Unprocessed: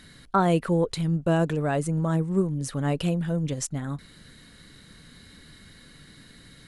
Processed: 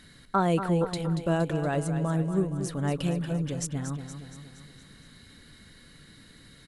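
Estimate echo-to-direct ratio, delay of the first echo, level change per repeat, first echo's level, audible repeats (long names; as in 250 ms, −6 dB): −8.0 dB, 234 ms, −5.0 dB, −9.5 dB, 5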